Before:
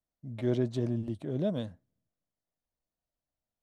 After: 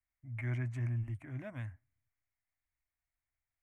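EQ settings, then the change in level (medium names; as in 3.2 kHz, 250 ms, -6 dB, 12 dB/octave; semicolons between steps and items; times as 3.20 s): FFT filter 120 Hz 0 dB, 170 Hz -24 dB, 290 Hz -10 dB, 450 Hz -26 dB, 700 Hz -8 dB, 1.4 kHz 0 dB, 2.2 kHz +9 dB, 3.7 kHz -25 dB, 6.6 kHz -9 dB, 9.7 kHz -6 dB; dynamic bell 510 Hz, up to -4 dB, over -56 dBFS, Q 1.2; +1.0 dB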